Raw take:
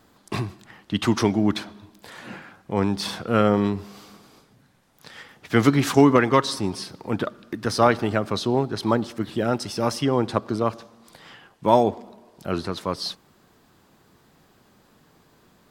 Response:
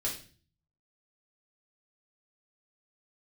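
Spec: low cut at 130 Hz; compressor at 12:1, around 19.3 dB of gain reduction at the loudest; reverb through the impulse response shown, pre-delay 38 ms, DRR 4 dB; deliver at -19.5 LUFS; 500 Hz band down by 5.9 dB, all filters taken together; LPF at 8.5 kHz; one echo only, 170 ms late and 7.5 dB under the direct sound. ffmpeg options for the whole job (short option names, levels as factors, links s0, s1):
-filter_complex "[0:a]highpass=130,lowpass=8500,equalizer=f=500:t=o:g=-7.5,acompressor=threshold=0.0224:ratio=12,aecho=1:1:170:0.422,asplit=2[s0][s1];[1:a]atrim=start_sample=2205,adelay=38[s2];[s1][s2]afir=irnorm=-1:irlink=0,volume=0.422[s3];[s0][s3]amix=inputs=2:normalize=0,volume=7.5"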